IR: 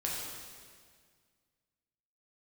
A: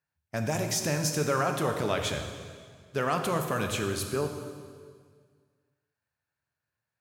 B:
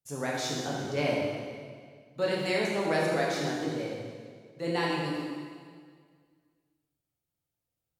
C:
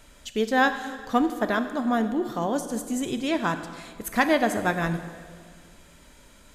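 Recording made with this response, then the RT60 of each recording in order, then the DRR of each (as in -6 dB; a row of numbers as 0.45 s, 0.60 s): B; 1.8 s, 1.8 s, 1.8 s; 4.0 dB, -4.5 dB, 8.5 dB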